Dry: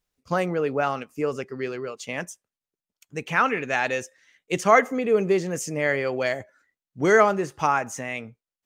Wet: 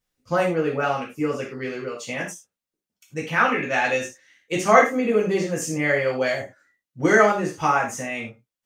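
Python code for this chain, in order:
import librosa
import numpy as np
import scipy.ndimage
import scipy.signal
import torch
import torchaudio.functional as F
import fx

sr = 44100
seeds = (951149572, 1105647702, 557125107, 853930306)

y = fx.peak_eq(x, sr, hz=7700.0, db=-9.0, octaves=0.24, at=(3.2, 3.74))
y = fx.rev_gated(y, sr, seeds[0], gate_ms=130, shape='falling', drr_db=-4.0)
y = y * 10.0 ** (-3.0 / 20.0)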